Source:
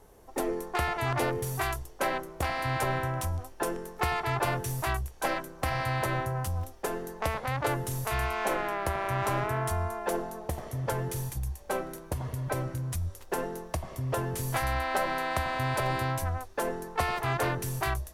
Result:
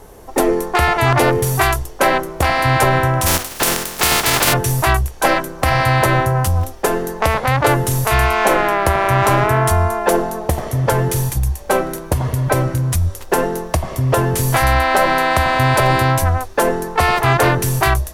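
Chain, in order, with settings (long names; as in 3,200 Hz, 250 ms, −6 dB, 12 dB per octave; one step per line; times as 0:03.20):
0:03.25–0:04.52: compressing power law on the bin magnitudes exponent 0.31
boost into a limiter +16.5 dB
level −1 dB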